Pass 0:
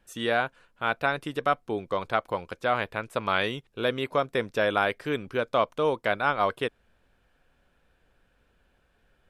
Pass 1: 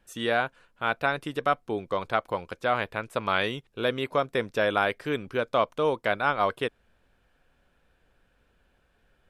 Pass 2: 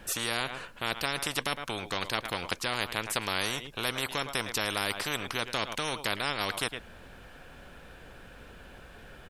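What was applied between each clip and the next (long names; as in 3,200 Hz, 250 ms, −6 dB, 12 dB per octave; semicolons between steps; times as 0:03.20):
no processing that can be heard
single-tap delay 109 ms −23.5 dB; every bin compressed towards the loudest bin 4 to 1; level −1.5 dB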